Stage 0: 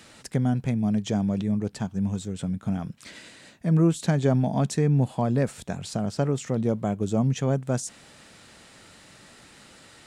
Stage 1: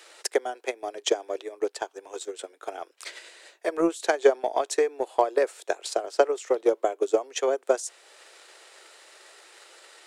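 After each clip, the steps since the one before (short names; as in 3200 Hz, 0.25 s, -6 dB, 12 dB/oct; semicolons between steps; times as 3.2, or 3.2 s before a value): steep high-pass 350 Hz 72 dB/oct; transient shaper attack +11 dB, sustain -3 dB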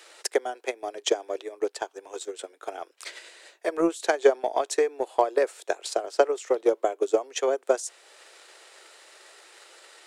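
nothing audible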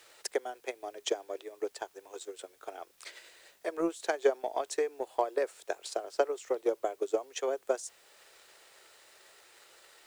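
requantised 10-bit, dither triangular; gain -7.5 dB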